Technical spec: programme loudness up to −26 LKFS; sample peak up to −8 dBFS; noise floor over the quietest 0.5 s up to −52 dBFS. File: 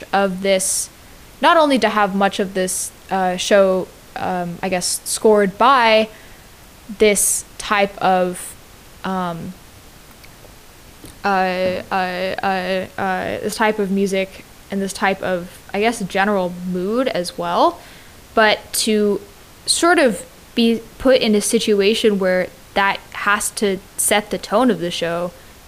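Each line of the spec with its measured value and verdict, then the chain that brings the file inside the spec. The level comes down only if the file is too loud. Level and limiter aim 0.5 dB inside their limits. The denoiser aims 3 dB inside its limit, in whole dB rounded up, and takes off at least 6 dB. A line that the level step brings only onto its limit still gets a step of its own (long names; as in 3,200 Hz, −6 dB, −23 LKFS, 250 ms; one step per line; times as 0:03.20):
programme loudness −18.0 LKFS: out of spec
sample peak −3.0 dBFS: out of spec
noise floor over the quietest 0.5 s −43 dBFS: out of spec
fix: broadband denoise 6 dB, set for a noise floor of −43 dBFS
level −8.5 dB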